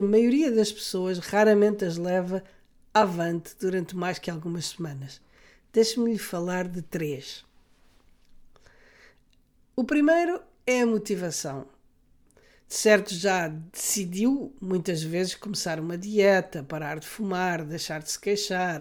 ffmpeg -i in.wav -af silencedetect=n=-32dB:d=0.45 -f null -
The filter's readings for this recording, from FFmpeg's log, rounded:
silence_start: 2.39
silence_end: 2.95 | silence_duration: 0.56
silence_start: 5.06
silence_end: 5.74 | silence_duration: 0.69
silence_start: 7.35
silence_end: 9.78 | silence_duration: 2.42
silence_start: 11.62
silence_end: 12.72 | silence_duration: 1.09